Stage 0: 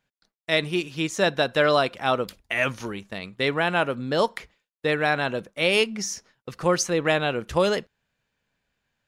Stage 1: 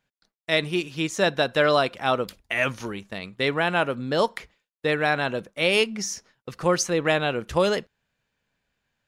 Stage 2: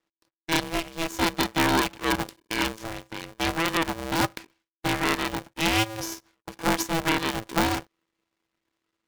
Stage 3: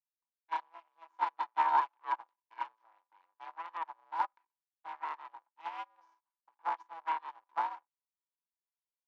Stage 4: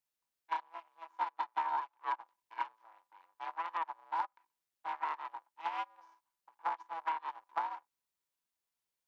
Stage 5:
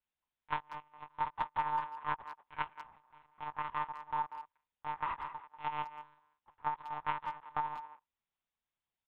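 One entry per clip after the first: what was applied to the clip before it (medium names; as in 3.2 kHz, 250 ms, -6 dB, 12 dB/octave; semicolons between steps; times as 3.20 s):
no audible change
half-wave rectifier; polarity switched at an audio rate 330 Hz
ladder band-pass 1 kHz, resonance 75%; upward expansion 2.5:1, over -41 dBFS; trim +2.5 dB
compression 10:1, threshold -37 dBFS, peak gain reduction 15 dB; trim +5.5 dB
monotone LPC vocoder at 8 kHz 150 Hz; speakerphone echo 190 ms, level -11 dB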